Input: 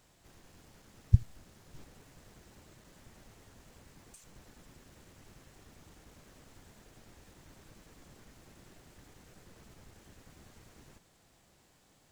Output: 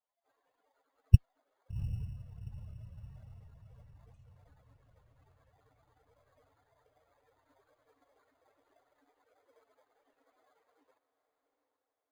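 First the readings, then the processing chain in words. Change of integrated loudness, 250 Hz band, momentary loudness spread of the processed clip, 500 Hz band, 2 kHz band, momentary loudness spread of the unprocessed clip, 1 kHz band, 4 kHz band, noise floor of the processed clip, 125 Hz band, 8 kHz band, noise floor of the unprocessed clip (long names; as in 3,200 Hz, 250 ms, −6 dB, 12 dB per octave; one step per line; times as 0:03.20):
−1.5 dB, +3.0 dB, 22 LU, −7.5 dB, −6.0 dB, 0 LU, −8.0 dB, can't be measured, −85 dBFS, +3.0 dB, below −10 dB, −67 dBFS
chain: spectral dynamics exaggerated over time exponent 3
low-pass filter 1,500 Hz 12 dB per octave
feedback delay with all-pass diffusion 764 ms, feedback 44%, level −12 dB
in parallel at −4 dB: decimation without filtering 16×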